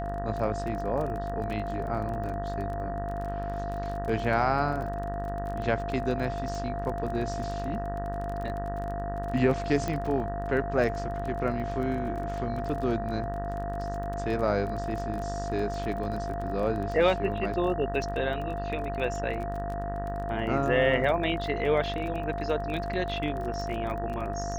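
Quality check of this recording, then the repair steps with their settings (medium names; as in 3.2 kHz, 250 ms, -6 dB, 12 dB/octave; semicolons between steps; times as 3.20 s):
buzz 50 Hz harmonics 38 -35 dBFS
crackle 23 per s -34 dBFS
whine 690 Hz -33 dBFS
9.88 s: pop -17 dBFS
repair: de-click; de-hum 50 Hz, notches 38; band-stop 690 Hz, Q 30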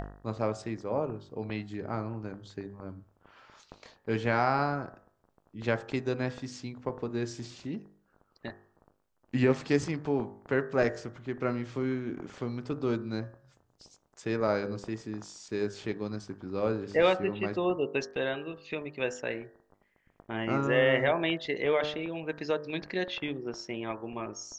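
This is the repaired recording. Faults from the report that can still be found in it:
nothing left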